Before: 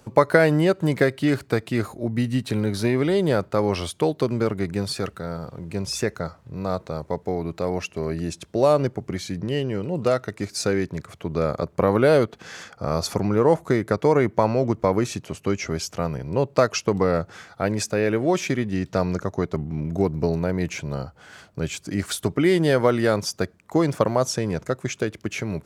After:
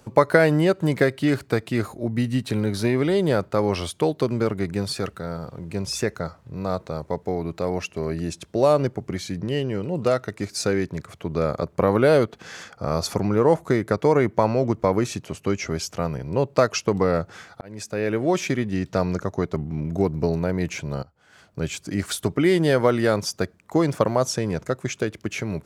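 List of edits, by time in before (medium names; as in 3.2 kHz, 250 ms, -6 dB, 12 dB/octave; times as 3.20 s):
17.61–18.45 s: fade in equal-power
21.03–21.61 s: fade in quadratic, from -16 dB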